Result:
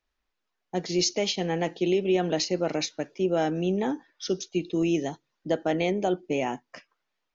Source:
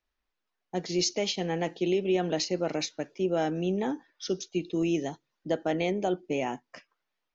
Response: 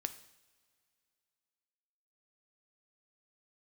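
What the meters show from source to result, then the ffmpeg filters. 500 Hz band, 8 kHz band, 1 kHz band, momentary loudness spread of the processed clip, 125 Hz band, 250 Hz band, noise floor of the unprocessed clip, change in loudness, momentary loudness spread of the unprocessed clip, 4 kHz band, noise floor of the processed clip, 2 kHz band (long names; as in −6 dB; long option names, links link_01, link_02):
+2.5 dB, can't be measured, +2.5 dB, 8 LU, +2.5 dB, +2.5 dB, −84 dBFS, +2.5 dB, 8 LU, +2.5 dB, −81 dBFS, +2.5 dB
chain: -af "aresample=16000,aresample=44100,volume=2.5dB"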